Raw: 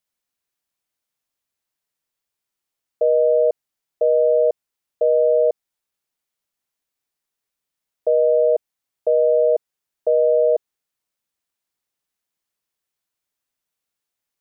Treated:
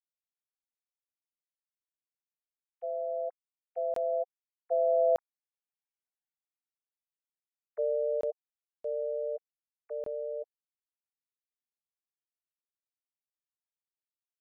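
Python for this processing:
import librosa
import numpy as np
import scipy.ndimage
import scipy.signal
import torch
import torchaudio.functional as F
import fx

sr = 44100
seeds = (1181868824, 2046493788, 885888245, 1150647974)

y = fx.sine_speech(x, sr)
y = fx.doppler_pass(y, sr, speed_mps=21, closest_m=8.3, pass_at_s=6.01)
y = fx.buffer_crackle(y, sr, first_s=0.89, period_s=0.61, block=1024, kind='zero')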